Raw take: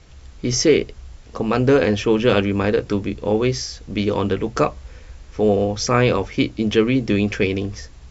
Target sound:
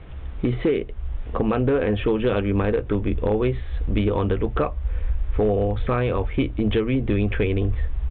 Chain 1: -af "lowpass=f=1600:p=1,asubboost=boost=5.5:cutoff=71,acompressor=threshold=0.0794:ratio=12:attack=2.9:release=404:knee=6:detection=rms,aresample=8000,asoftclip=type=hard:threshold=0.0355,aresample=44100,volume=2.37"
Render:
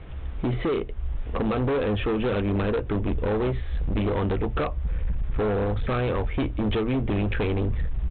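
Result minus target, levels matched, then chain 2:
hard clipper: distortion +18 dB
-af "lowpass=f=1600:p=1,asubboost=boost=5.5:cutoff=71,acompressor=threshold=0.0794:ratio=12:attack=2.9:release=404:knee=6:detection=rms,aresample=8000,asoftclip=type=hard:threshold=0.0891,aresample=44100,volume=2.37"

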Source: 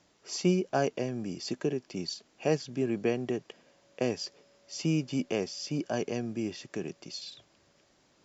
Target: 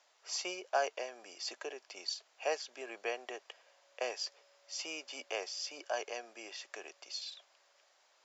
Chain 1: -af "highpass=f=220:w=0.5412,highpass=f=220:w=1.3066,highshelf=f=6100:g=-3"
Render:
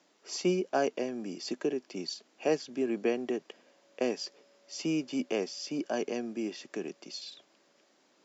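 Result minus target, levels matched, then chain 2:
250 Hz band +16.0 dB
-af "highpass=f=610:w=0.5412,highpass=f=610:w=1.3066,highshelf=f=6100:g=-3"

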